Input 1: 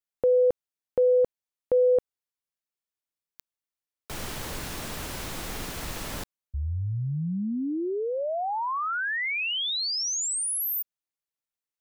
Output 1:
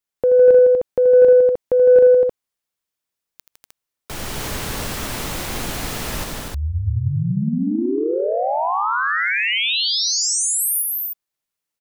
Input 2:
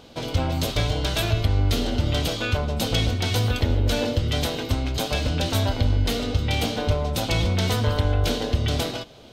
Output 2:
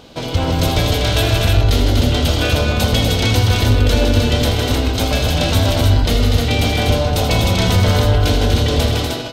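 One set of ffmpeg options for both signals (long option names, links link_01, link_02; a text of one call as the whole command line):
ffmpeg -i in.wav -af "aecho=1:1:80|158|244|308:0.355|0.473|0.562|0.631,acontrast=41" out.wav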